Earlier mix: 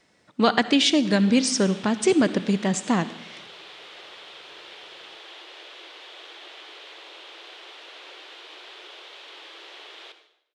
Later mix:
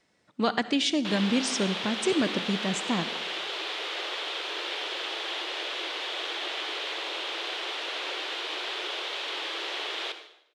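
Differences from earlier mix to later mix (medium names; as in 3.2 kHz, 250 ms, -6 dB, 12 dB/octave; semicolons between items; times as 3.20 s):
speech -6.5 dB; background +10.5 dB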